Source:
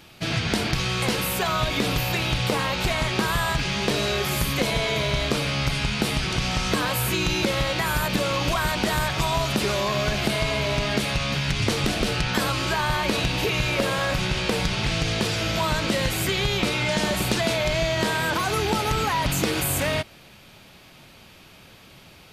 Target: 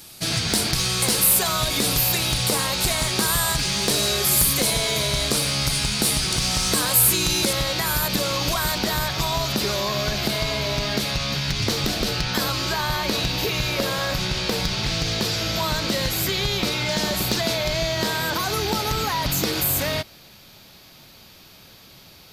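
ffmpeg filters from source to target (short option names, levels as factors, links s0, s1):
-af "asetnsamples=n=441:p=0,asendcmd='7.53 equalizer g -4.5;8.78 equalizer g -12',equalizer=f=9400:t=o:w=0.81:g=5.5,aexciter=amount=1.7:drive=9.5:freq=3900,volume=0.891"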